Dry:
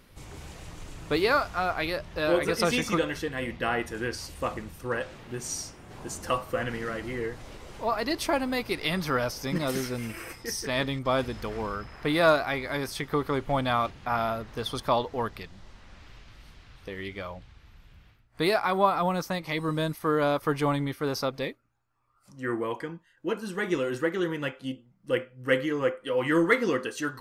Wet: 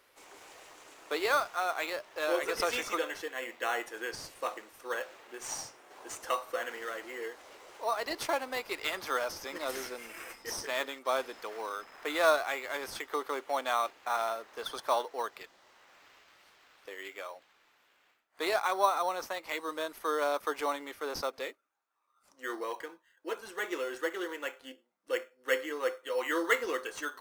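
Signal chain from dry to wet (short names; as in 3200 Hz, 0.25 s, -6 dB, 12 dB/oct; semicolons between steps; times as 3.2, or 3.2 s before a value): Bessel high-pass 550 Hz, order 6; in parallel at -6 dB: sample-and-hold 9×; on the sum: gain -5.5 dB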